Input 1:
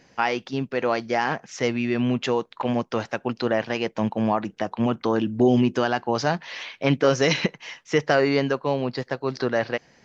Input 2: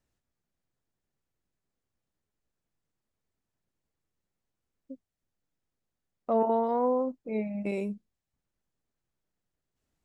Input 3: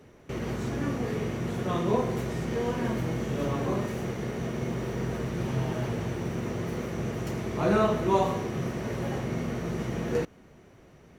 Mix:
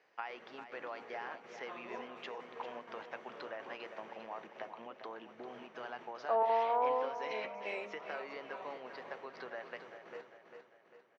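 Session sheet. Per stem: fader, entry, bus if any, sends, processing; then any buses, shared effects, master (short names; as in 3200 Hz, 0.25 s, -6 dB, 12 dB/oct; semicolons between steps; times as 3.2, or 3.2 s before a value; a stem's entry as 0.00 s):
-11.5 dB, 0.00 s, no send, echo send -10 dB, compressor, threshold -25 dBFS, peak gain reduction 11.5 dB
+2.5 dB, 0.00 s, no send, echo send -11.5 dB, HPF 720 Hz 6 dB/oct
-14.5 dB, 0.00 s, no send, echo send -6.5 dB, step gate "xx.xxxxx." 188 bpm -12 dB; auto duck -17 dB, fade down 0.25 s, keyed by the second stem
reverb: off
echo: feedback echo 0.398 s, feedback 47%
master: BPF 620–2900 Hz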